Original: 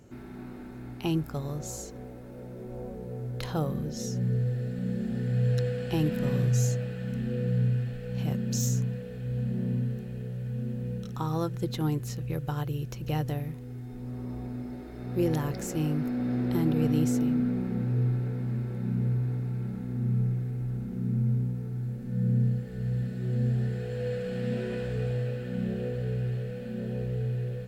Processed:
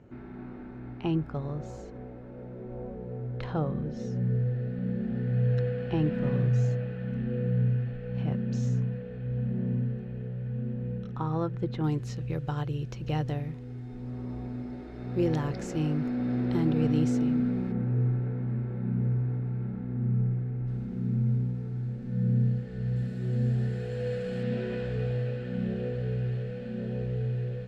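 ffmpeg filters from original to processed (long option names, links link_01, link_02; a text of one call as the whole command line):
ffmpeg -i in.wav -af "asetnsamples=nb_out_samples=441:pad=0,asendcmd='11.84 lowpass f 5000;17.72 lowpass f 2100;20.67 lowpass f 5000;22.96 lowpass f 8500;24.43 lowpass f 4800',lowpass=2300" out.wav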